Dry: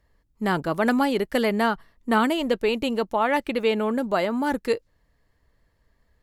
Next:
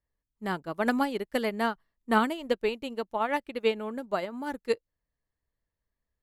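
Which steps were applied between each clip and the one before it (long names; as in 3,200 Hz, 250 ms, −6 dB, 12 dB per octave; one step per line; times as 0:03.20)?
expander for the loud parts 2.5 to 1, over −30 dBFS
level −1.5 dB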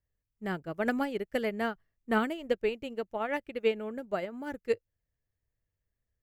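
graphic EQ with 15 bands 100 Hz +8 dB, 250 Hz −4 dB, 1,000 Hz −10 dB, 4,000 Hz −9 dB, 10,000 Hz −10 dB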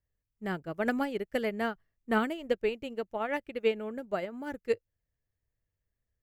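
no processing that can be heard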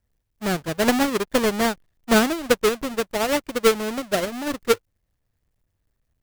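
each half-wave held at its own peak
level +6 dB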